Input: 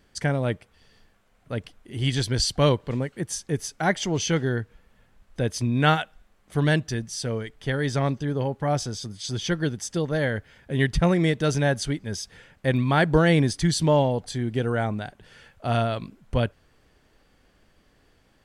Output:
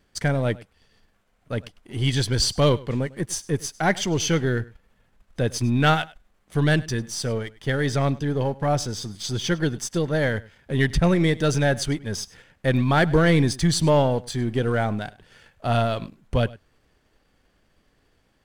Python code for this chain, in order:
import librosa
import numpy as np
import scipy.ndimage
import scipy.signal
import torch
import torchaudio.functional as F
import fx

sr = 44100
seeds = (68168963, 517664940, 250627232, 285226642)

y = np.where(x < 0.0, 10.0 ** (-3.0 / 20.0) * x, x)
y = fx.leveller(y, sr, passes=1)
y = y + 10.0 ** (-21.0 / 20.0) * np.pad(y, (int(101 * sr / 1000.0), 0))[:len(y)]